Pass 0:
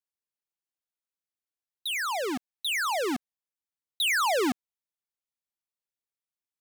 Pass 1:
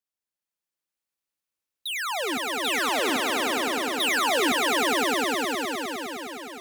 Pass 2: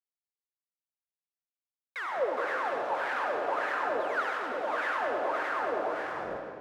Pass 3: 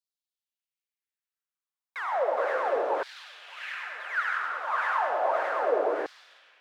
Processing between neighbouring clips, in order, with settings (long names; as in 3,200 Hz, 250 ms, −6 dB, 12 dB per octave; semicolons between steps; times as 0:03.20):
echo that builds up and dies away 103 ms, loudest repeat 5, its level −5 dB
comparator with hysteresis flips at −29.5 dBFS; LFO wah 1.7 Hz 510–1,700 Hz, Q 5.2; comb and all-pass reverb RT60 1.8 s, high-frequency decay 0.9×, pre-delay 40 ms, DRR 1.5 dB; level +4.5 dB
high-pass filter 110 Hz; low-shelf EQ 360 Hz +7.5 dB; auto-filter high-pass saw down 0.33 Hz 370–4,400 Hz; level −1.5 dB